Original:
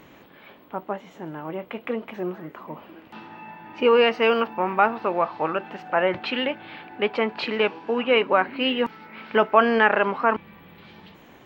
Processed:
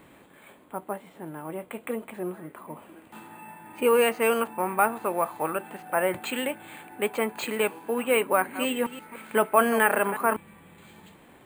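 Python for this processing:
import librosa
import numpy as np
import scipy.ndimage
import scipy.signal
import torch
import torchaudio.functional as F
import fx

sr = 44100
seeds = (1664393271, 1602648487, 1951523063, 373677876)

y = fx.reverse_delay(x, sr, ms=168, wet_db=-13.0, at=(8.32, 10.34))
y = fx.notch(y, sr, hz=2900.0, q=21.0)
y = np.repeat(scipy.signal.resample_poly(y, 1, 4), 4)[:len(y)]
y = F.gain(torch.from_numpy(y), -3.5).numpy()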